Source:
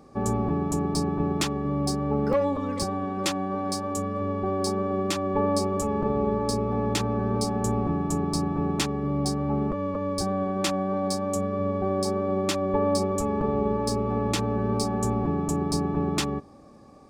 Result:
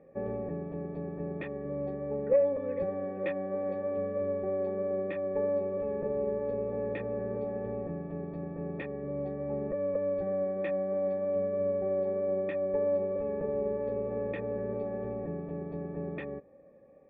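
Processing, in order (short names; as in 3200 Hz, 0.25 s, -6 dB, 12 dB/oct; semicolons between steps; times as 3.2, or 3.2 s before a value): bell 170 Hz +8.5 dB 0.22 oct; vocal rider 0.5 s; vocal tract filter e; gain +4.5 dB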